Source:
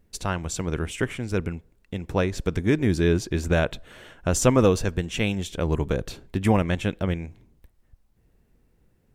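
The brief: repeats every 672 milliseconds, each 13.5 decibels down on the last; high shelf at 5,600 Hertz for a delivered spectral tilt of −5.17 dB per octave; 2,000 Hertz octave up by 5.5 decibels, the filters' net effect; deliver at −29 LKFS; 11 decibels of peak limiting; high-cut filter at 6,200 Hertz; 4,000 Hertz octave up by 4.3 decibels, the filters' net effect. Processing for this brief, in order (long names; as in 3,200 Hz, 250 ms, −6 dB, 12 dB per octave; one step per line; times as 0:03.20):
low-pass filter 6,200 Hz
parametric band 2,000 Hz +6.5 dB
parametric band 4,000 Hz +5 dB
high-shelf EQ 5,600 Hz −3.5 dB
brickwall limiter −15 dBFS
repeating echo 672 ms, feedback 21%, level −13.5 dB
level −1 dB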